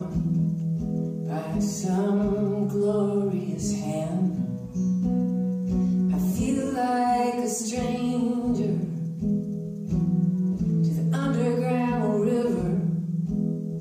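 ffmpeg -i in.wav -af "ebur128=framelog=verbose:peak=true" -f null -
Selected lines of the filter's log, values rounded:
Integrated loudness:
  I:         -25.7 LUFS
  Threshold: -35.7 LUFS
Loudness range:
  LRA:         1.5 LU
  Threshold: -45.6 LUFS
  LRA low:   -26.2 LUFS
  LRA high:  -24.7 LUFS
True peak:
  Peak:      -13.2 dBFS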